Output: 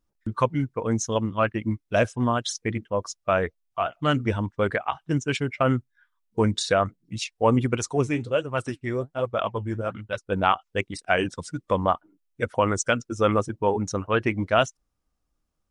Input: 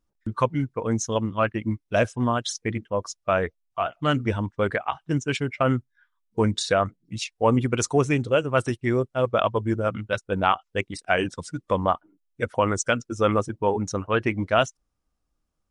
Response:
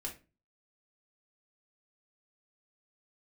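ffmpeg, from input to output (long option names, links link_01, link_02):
-filter_complex "[0:a]asettb=1/sr,asplit=3[link_01][link_02][link_03];[link_01]atrim=end=7.774[link_04];[link_02]atrim=start=7.77:end=10.27,asetpts=PTS-STARTPTS,afade=type=in:duration=0.004:curve=qsin,afade=type=out:start_time=2.496:duration=0.004:curve=qsin,flanger=delay=1:depth=9.3:regen=58:speed=1.3:shape=sinusoidal[link_05];[link_03]atrim=start=10.266[link_06];[link_04][link_05]acrossfade=duration=0.004:curve1=hsin:curve2=qsin[link_07];[link_07][link_06]acrossfade=duration=0.004:curve1=qsin:curve2=hsin"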